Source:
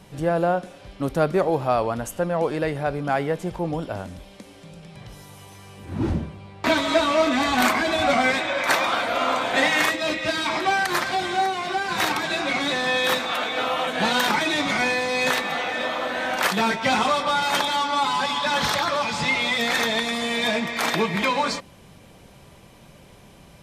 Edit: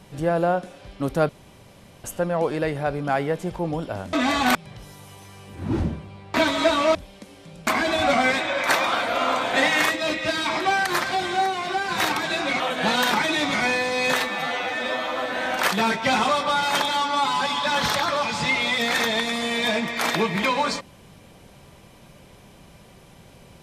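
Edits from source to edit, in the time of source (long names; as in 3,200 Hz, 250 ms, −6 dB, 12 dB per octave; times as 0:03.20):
0:01.29–0:02.04: fill with room tone
0:04.13–0:04.85: swap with 0:07.25–0:07.67
0:12.60–0:13.77: remove
0:15.37–0:16.12: time-stretch 1.5×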